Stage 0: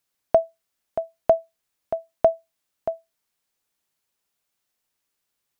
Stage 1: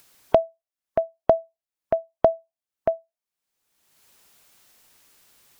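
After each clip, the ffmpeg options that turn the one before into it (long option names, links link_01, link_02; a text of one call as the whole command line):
ffmpeg -i in.wav -af "acompressor=threshold=-17dB:ratio=6,afftdn=noise_reduction=25:noise_floor=-45,acompressor=mode=upward:threshold=-31dB:ratio=2.5,volume=4.5dB" out.wav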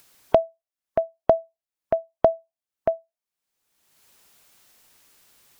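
ffmpeg -i in.wav -af anull out.wav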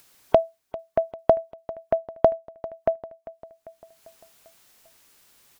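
ffmpeg -i in.wav -af "aecho=1:1:396|792|1188|1584|1980:0.133|0.0733|0.0403|0.0222|0.0122" out.wav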